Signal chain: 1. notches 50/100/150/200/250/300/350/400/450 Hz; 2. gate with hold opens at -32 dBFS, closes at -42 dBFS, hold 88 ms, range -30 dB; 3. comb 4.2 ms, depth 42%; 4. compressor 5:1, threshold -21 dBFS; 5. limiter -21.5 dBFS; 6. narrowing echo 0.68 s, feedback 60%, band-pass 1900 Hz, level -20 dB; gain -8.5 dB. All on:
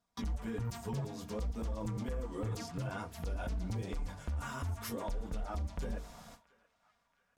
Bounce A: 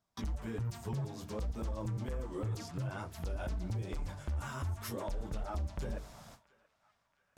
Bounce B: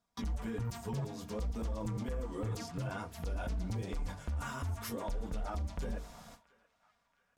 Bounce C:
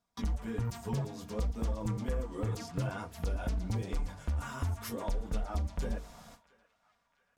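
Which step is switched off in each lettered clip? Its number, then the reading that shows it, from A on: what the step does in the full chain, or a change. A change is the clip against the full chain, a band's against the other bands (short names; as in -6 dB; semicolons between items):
3, 125 Hz band +2.5 dB; 4, mean gain reduction 2.5 dB; 5, mean gain reduction 2.0 dB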